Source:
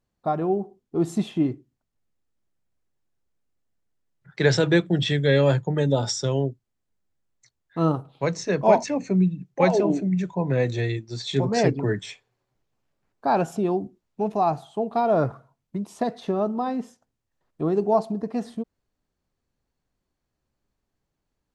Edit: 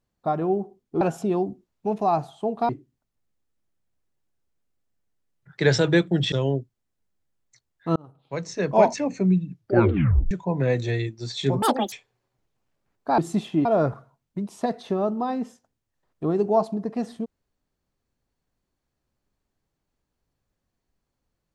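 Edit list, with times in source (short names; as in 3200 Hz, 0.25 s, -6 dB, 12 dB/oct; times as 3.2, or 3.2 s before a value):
1.01–1.48 swap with 13.35–15.03
5.11–6.22 cut
7.86–8.66 fade in
9.41 tape stop 0.80 s
11.52–12.09 speed 189%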